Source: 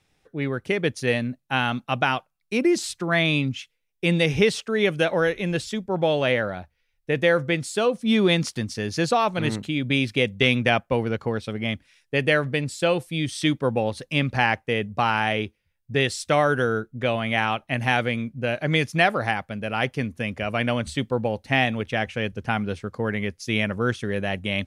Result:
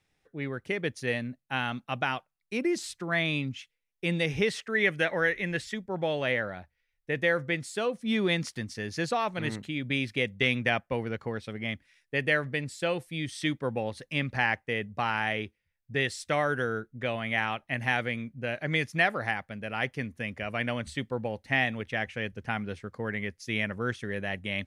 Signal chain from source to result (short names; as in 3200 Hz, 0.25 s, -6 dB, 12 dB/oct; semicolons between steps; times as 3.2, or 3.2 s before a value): bell 1900 Hz +4 dB 0.49 oct, from 4.5 s +14.5 dB, from 5.74 s +6.5 dB; gain -8 dB